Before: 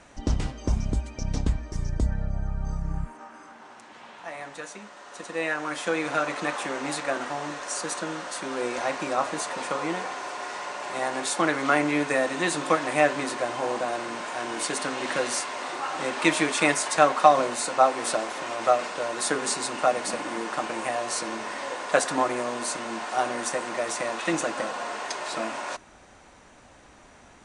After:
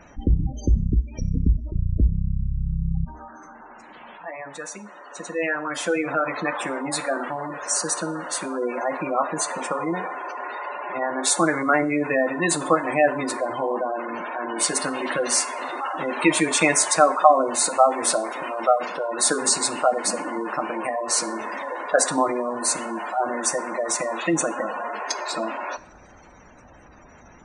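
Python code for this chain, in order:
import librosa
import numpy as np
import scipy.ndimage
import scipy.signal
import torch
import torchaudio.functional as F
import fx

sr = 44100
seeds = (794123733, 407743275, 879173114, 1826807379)

y = fx.spec_gate(x, sr, threshold_db=-15, keep='strong')
y = fx.bass_treble(y, sr, bass_db=3, treble_db=7)
y = fx.rev_double_slope(y, sr, seeds[0], early_s=0.48, late_s=3.3, knee_db=-28, drr_db=13.0)
y = y * librosa.db_to_amplitude(3.0)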